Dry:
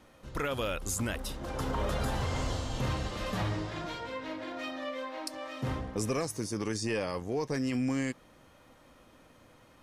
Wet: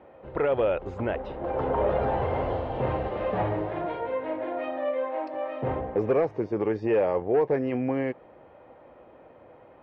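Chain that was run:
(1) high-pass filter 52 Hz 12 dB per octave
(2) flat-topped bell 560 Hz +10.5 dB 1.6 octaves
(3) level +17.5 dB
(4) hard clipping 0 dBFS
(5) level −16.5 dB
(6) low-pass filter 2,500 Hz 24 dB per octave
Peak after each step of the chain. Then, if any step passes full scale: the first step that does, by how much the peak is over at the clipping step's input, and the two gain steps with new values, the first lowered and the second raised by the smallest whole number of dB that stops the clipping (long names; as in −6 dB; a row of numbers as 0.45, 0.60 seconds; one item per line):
−18.0, −13.5, +4.0, 0.0, −16.5, −16.0 dBFS
step 3, 4.0 dB
step 3 +13.5 dB, step 5 −12.5 dB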